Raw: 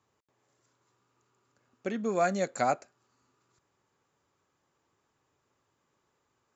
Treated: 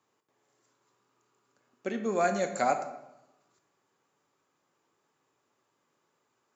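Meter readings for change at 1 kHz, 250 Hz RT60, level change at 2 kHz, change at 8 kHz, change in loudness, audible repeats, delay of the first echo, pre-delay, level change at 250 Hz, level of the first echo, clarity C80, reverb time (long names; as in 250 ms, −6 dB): +1.0 dB, 1.0 s, +1.0 dB, can't be measured, +0.5 dB, no echo audible, no echo audible, 11 ms, −0.5 dB, no echo audible, 12.0 dB, 0.90 s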